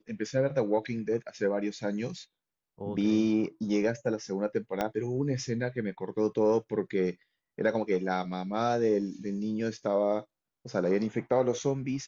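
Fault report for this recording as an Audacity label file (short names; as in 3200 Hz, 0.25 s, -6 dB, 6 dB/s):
4.810000	4.810000	pop -15 dBFS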